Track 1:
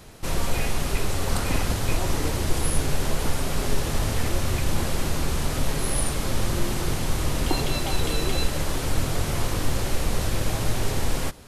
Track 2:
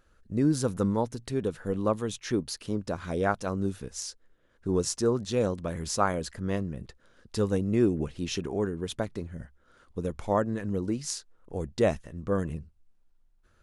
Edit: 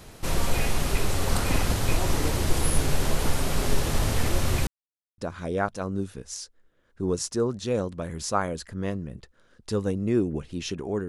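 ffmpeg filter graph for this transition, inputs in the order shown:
-filter_complex "[0:a]apad=whole_dur=11.08,atrim=end=11.08,asplit=2[a][b];[a]atrim=end=4.67,asetpts=PTS-STARTPTS,afade=t=out:st=4.666:d=0.004:c=hsin[c];[b]atrim=start=4.67:end=5.18,asetpts=PTS-STARTPTS,volume=0[d];[1:a]atrim=start=2.84:end=8.74,asetpts=PTS-STARTPTS,afade=t=in:d=0.004:c=hsin[e];[c][d][e]concat=n=3:v=0:a=1"

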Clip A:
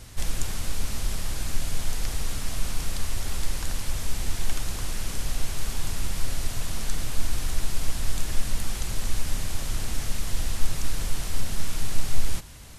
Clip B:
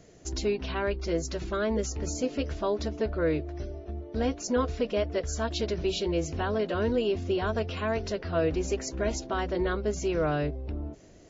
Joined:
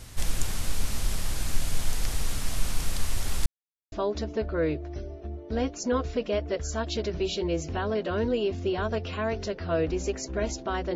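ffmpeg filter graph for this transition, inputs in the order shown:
-filter_complex "[0:a]apad=whole_dur=10.95,atrim=end=10.95,asplit=2[a][b];[a]atrim=end=3.46,asetpts=PTS-STARTPTS,afade=t=out:st=3.456:d=0.004:c=hsin[c];[b]atrim=start=3.46:end=3.92,asetpts=PTS-STARTPTS,volume=0[d];[1:a]atrim=start=2.56:end=9.59,asetpts=PTS-STARTPTS,afade=t=in:d=0.004:c=hsin[e];[c][d][e]concat=n=3:v=0:a=1"

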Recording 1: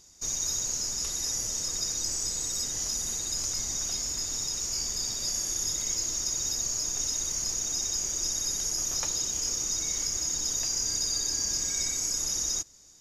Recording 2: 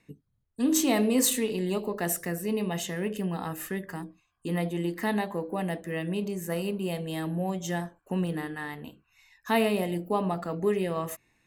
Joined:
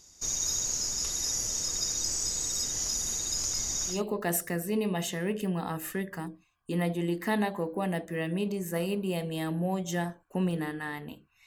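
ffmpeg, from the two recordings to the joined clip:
-filter_complex "[0:a]apad=whole_dur=11.46,atrim=end=11.46,atrim=end=4.02,asetpts=PTS-STARTPTS[a];[1:a]atrim=start=1.62:end=9.22,asetpts=PTS-STARTPTS[b];[a][b]acrossfade=d=0.16:c1=tri:c2=tri"

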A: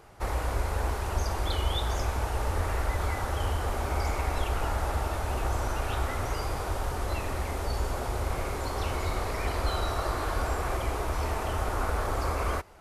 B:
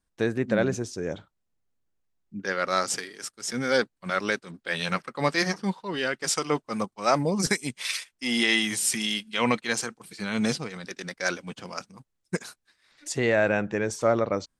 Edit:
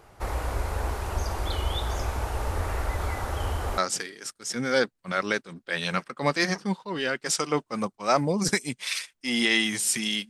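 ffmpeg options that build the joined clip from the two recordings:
-filter_complex "[0:a]apad=whole_dur=10.29,atrim=end=10.29,atrim=end=3.782[a];[1:a]atrim=start=2.758:end=9.27[b];[a][b]acrossfade=d=0.004:c1=hsin:c2=hsin"

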